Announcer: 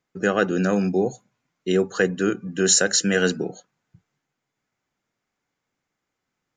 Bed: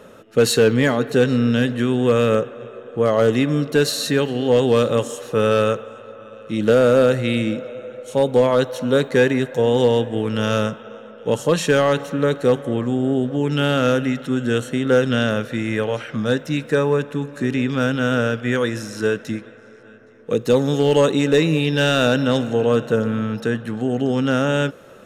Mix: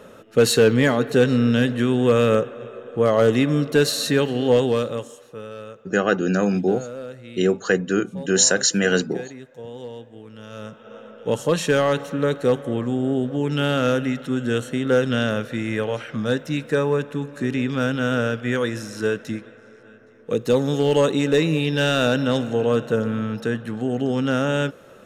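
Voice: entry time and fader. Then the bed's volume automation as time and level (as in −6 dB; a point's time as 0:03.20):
5.70 s, +1.0 dB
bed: 0:04.52 −0.5 dB
0:05.49 −19.5 dB
0:10.50 −19.5 dB
0:10.97 −2.5 dB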